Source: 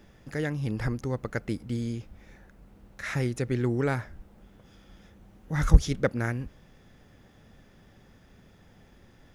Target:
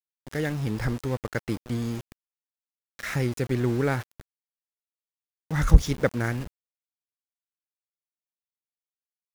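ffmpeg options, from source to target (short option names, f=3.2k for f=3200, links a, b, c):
-af "aeval=exprs='val(0)*gte(abs(val(0)),0.0141)':c=same,volume=2dB"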